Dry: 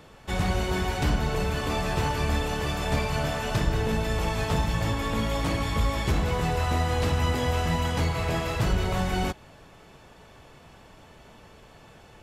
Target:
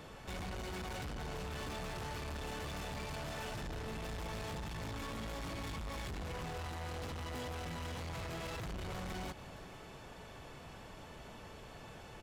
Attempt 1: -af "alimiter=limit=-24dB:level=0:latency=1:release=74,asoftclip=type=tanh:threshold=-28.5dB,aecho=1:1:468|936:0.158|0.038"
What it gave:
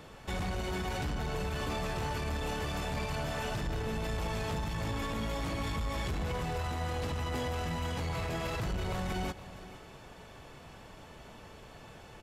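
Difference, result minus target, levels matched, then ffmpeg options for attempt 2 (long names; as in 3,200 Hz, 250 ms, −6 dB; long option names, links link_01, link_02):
soft clipping: distortion −10 dB
-af "alimiter=limit=-24dB:level=0:latency=1:release=74,asoftclip=type=tanh:threshold=-40.5dB,aecho=1:1:468|936:0.158|0.038"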